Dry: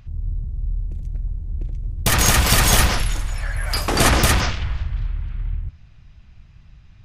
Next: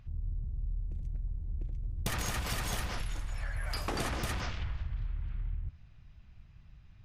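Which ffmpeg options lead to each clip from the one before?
ffmpeg -i in.wav -af "highshelf=frequency=4700:gain=-5.5,acompressor=threshold=-22dB:ratio=10,volume=-8.5dB" out.wav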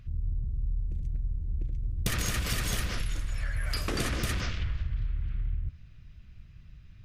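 ffmpeg -i in.wav -af "equalizer=frequency=840:width_type=o:width=0.73:gain=-12,volume=5dB" out.wav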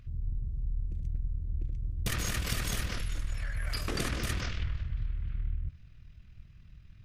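ffmpeg -i in.wav -af "tremolo=f=40:d=0.519" out.wav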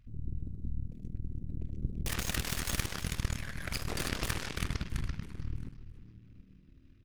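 ffmpeg -i in.wav -filter_complex "[0:a]asplit=6[link_01][link_02][link_03][link_04][link_05][link_06];[link_02]adelay=332,afreqshift=-76,volume=-9.5dB[link_07];[link_03]adelay=664,afreqshift=-152,volume=-16.1dB[link_08];[link_04]adelay=996,afreqshift=-228,volume=-22.6dB[link_09];[link_05]adelay=1328,afreqshift=-304,volume=-29.2dB[link_10];[link_06]adelay=1660,afreqshift=-380,volume=-35.7dB[link_11];[link_01][link_07][link_08][link_09][link_10][link_11]amix=inputs=6:normalize=0,aeval=exprs='0.126*(cos(1*acos(clip(val(0)/0.126,-1,1)))-cos(1*PI/2))+0.00708*(cos(5*acos(clip(val(0)/0.126,-1,1)))-cos(5*PI/2))+0.0355*(cos(6*acos(clip(val(0)/0.126,-1,1)))-cos(6*PI/2))+0.0316*(cos(7*acos(clip(val(0)/0.126,-1,1)))-cos(7*PI/2))+0.0355*(cos(8*acos(clip(val(0)/0.126,-1,1)))-cos(8*PI/2))':channel_layout=same,volume=-2dB" out.wav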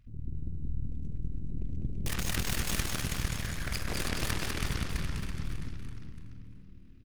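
ffmpeg -i in.wav -af "aecho=1:1:200|420|662|928.2|1221:0.631|0.398|0.251|0.158|0.1" out.wav

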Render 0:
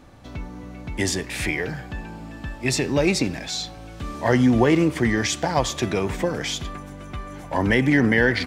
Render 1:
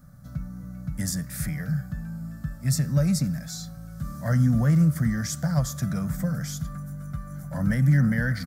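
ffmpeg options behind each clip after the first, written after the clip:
ffmpeg -i in.wav -af "firequalizer=gain_entry='entry(100,0);entry(150,12);entry(370,-26);entry(570,-6);entry(900,-19);entry(1300,0);entry(2600,-23);entry(4900,-5);entry(8600,1);entry(13000,12)':delay=0.05:min_phase=1,volume=-2.5dB" out.wav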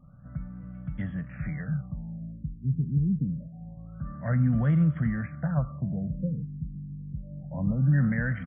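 ffmpeg -i in.wav -af "afftfilt=real='re*lt(b*sr/1024,430*pow(3500/430,0.5+0.5*sin(2*PI*0.26*pts/sr)))':imag='im*lt(b*sr/1024,430*pow(3500/430,0.5+0.5*sin(2*PI*0.26*pts/sr)))':win_size=1024:overlap=0.75,volume=-3dB" out.wav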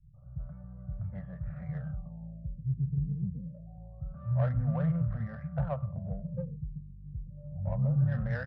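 ffmpeg -i in.wav -filter_complex "[0:a]firequalizer=gain_entry='entry(130,0);entry(290,-22);entry(540,3);entry(2200,-1)':delay=0.05:min_phase=1,acrossover=split=160|1700[link_01][link_02][link_03];[link_02]adelay=140[link_04];[link_03]adelay=170[link_05];[link_01][link_04][link_05]amix=inputs=3:normalize=0,adynamicsmooth=sensitivity=1.5:basefreq=1000" out.wav

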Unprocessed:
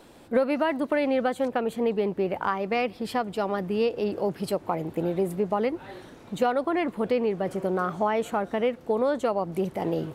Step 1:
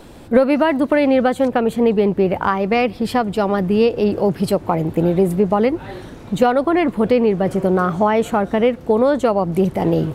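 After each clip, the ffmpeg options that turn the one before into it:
ffmpeg -i in.wav -af "lowshelf=frequency=160:gain=11.5,volume=8dB" out.wav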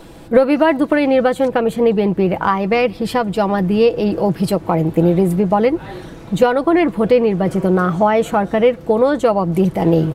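ffmpeg -i in.wav -af "aecho=1:1:6.1:0.39,volume=1dB" out.wav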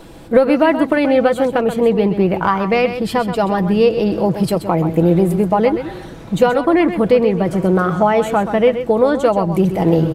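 ffmpeg -i in.wav -af "aecho=1:1:129:0.316" out.wav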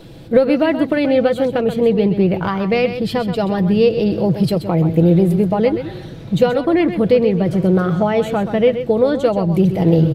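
ffmpeg -i in.wav -af "equalizer=frequency=125:width_type=o:width=1:gain=10,equalizer=frequency=500:width_type=o:width=1:gain=3,equalizer=frequency=1000:width_type=o:width=1:gain=-6,equalizer=frequency=4000:width_type=o:width=1:gain=6,equalizer=frequency=8000:width_type=o:width=1:gain=-5,volume=-3dB" out.wav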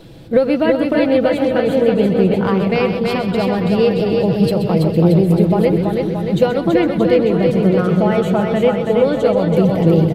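ffmpeg -i in.wav -af "aecho=1:1:330|627|894.3|1135|1351:0.631|0.398|0.251|0.158|0.1,volume=-1dB" out.wav

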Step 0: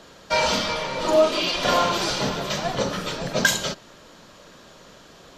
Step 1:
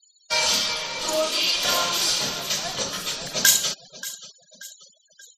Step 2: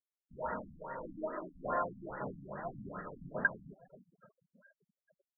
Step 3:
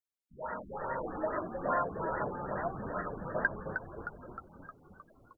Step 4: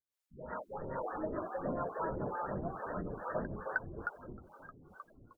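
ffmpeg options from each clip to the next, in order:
ffmpeg -i in.wav -af "aecho=1:1:582|1164|1746|2328:0.15|0.0733|0.0359|0.0176,crystalizer=i=8.5:c=0,afftfilt=real='re*gte(hypot(re,im),0.0355)':imag='im*gte(hypot(re,im),0.0355)':win_size=1024:overlap=0.75,volume=-10dB" out.wav
ffmpeg -i in.wav -af "afftfilt=real='re*lt(b*sr/1024,260*pow(2000/260,0.5+0.5*sin(2*PI*2.4*pts/sr)))':imag='im*lt(b*sr/1024,260*pow(2000/260,0.5+0.5*sin(2*PI*2.4*pts/sr)))':win_size=1024:overlap=0.75,volume=-6.5dB" out.wav
ffmpeg -i in.wav -filter_complex "[0:a]acrossover=split=490|1400[link_01][link_02][link_03];[link_01]acompressor=threshold=-49dB:ratio=4[link_04];[link_02]acompressor=threshold=-39dB:ratio=4[link_05];[link_03]acompressor=threshold=-43dB:ratio=4[link_06];[link_04][link_05][link_06]amix=inputs=3:normalize=0,asplit=2[link_07][link_08];[link_08]asplit=8[link_09][link_10][link_11][link_12][link_13][link_14][link_15][link_16];[link_09]adelay=310,afreqshift=-86,volume=-7dB[link_17];[link_10]adelay=620,afreqshift=-172,volume=-11.4dB[link_18];[link_11]adelay=930,afreqshift=-258,volume=-15.9dB[link_19];[link_12]adelay=1240,afreqshift=-344,volume=-20.3dB[link_20];[link_13]adelay=1550,afreqshift=-430,volume=-24.7dB[link_21];[link_14]adelay=1860,afreqshift=-516,volume=-29.2dB[link_22];[link_15]adelay=2170,afreqshift=-602,volume=-33.6dB[link_23];[link_16]adelay=2480,afreqshift=-688,volume=-38.1dB[link_24];[link_17][link_18][link_19][link_20][link_21][link_22][link_23][link_24]amix=inputs=8:normalize=0[link_25];[link_07][link_25]amix=inputs=2:normalize=0,dynaudnorm=framelen=180:gausssize=7:maxgain=10.5dB,volume=-3dB" out.wav
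ffmpeg -i in.wav -filter_complex "[0:a]acrossover=split=470[link_01][link_02];[link_01]aeval=exprs='val(0)*(1-1/2+1/2*cos(2*PI*2.3*n/s))':channel_layout=same[link_03];[link_02]aeval=exprs='val(0)*(1-1/2-1/2*cos(2*PI*2.3*n/s))':channel_layout=same[link_04];[link_03][link_04]amix=inputs=2:normalize=0,volume=4.5dB" out.wav

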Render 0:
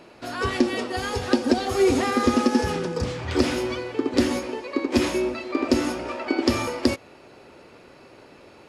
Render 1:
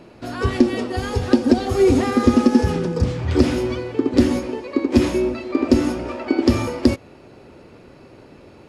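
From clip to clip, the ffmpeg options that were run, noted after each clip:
ffmpeg -i in.wav -af "lowshelf=frequency=360:gain=12,volume=-1.5dB" out.wav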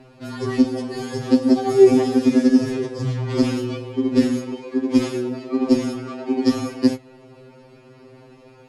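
ffmpeg -i in.wav -af "afftfilt=real='re*2.45*eq(mod(b,6),0)':imag='im*2.45*eq(mod(b,6),0)':win_size=2048:overlap=0.75" out.wav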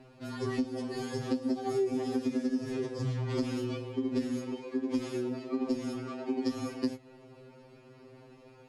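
ffmpeg -i in.wav -af "acompressor=threshold=-20dB:ratio=6,volume=-7.5dB" out.wav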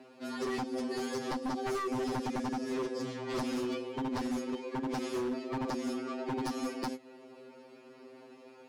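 ffmpeg -i in.wav -af "highpass=frequency=210:width=0.5412,highpass=frequency=210:width=1.3066,aeval=exprs='0.0299*(abs(mod(val(0)/0.0299+3,4)-2)-1)':channel_layout=same,volume=2dB" out.wav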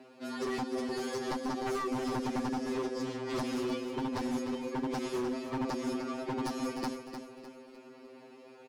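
ffmpeg -i in.wav -af "aecho=1:1:303|606|909|1212:0.355|0.138|0.054|0.021" out.wav

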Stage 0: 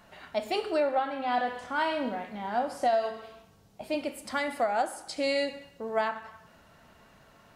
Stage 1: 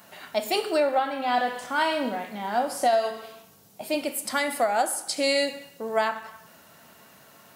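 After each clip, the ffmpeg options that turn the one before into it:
ffmpeg -i in.wav -af "highpass=140,aemphasis=mode=production:type=50fm,volume=4dB" out.wav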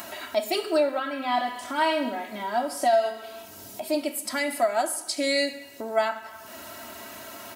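ffmpeg -i in.wav -af "aecho=1:1:3.1:0.9,acompressor=mode=upward:threshold=-25dB:ratio=2.5,volume=-3.5dB" out.wav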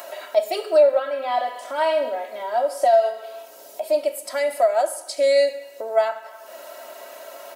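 ffmpeg -i in.wav -af "highpass=frequency=530:width_type=q:width=4.9,volume=-2.5dB" out.wav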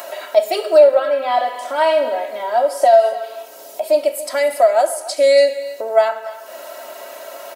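ffmpeg -i in.wav -af "aecho=1:1:284:0.141,volume=5.5dB" out.wav

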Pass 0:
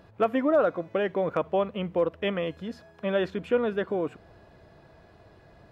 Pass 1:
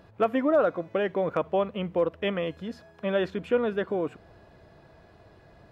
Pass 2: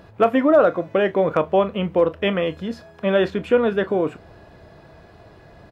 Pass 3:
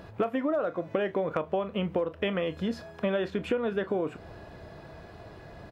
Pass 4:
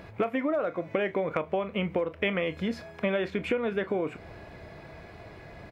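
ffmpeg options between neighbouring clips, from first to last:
ffmpeg -i in.wav -af anull out.wav
ffmpeg -i in.wav -af "aecho=1:1:26|39:0.188|0.126,volume=7.5dB" out.wav
ffmpeg -i in.wav -af "acompressor=threshold=-25dB:ratio=12" out.wav
ffmpeg -i in.wav -af "equalizer=frequency=2200:width_type=o:width=0.28:gain=12" out.wav

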